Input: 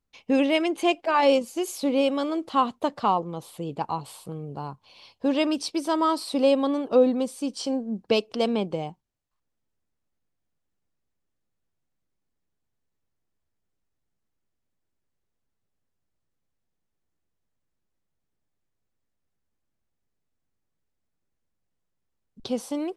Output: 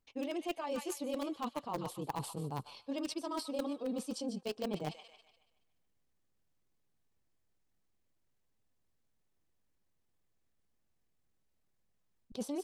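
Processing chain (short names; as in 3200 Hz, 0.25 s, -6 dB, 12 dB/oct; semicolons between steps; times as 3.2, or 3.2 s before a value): notch 1400 Hz, Q 23; thin delay 0.257 s, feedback 42%, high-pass 1600 Hz, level -9.5 dB; reverse; compressor 10:1, threshold -35 dBFS, peak gain reduction 21.5 dB; reverse; dynamic EQ 1900 Hz, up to -5 dB, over -56 dBFS, Q 1; in parallel at -9.5 dB: bit-crush 5-bit; on the sum: granular stretch 0.55×, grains 50 ms; gain +1.5 dB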